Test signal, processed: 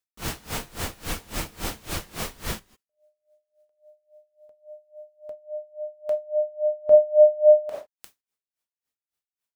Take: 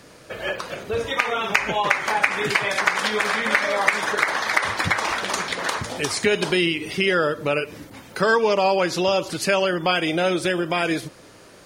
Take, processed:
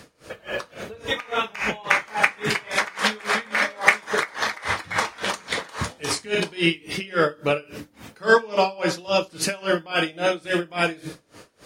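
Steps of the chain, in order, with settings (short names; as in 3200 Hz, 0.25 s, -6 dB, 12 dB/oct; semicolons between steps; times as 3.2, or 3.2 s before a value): non-linear reverb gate 0.18 s falling, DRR 4.5 dB; dB-linear tremolo 3.6 Hz, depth 25 dB; gain +2.5 dB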